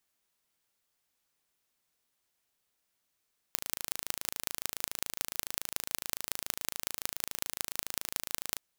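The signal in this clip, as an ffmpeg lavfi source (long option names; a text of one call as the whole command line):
ffmpeg -f lavfi -i "aevalsrc='0.75*eq(mod(n,1627),0)*(0.5+0.5*eq(mod(n,8135),0))':duration=5.05:sample_rate=44100" out.wav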